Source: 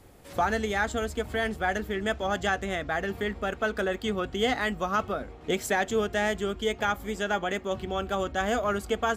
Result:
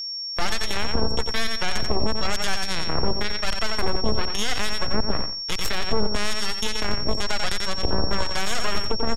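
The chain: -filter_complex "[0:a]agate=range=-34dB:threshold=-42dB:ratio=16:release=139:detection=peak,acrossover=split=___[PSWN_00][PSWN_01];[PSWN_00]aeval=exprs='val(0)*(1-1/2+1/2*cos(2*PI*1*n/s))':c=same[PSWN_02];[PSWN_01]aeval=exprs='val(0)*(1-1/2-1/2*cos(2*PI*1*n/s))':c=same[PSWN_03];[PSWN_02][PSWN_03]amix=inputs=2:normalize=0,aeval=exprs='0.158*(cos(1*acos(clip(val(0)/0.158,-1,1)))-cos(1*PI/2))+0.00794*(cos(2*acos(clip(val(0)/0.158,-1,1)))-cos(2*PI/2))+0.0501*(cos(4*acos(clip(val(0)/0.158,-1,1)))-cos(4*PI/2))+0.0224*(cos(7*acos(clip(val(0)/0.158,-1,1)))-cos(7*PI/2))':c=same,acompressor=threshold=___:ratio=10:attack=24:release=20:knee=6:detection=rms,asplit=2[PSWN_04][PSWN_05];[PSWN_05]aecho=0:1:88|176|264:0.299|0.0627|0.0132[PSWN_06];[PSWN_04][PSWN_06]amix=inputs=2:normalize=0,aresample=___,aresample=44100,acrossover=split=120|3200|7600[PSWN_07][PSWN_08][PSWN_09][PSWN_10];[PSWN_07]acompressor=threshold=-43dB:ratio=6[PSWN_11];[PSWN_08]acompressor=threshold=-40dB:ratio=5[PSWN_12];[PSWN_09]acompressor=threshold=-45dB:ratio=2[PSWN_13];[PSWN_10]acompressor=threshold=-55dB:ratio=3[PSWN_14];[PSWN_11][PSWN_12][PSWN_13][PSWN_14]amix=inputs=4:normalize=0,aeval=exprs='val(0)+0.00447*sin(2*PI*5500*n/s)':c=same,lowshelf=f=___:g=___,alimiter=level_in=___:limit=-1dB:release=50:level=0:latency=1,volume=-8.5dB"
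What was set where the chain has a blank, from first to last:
600, -34dB, 32000, 77, 11, 27dB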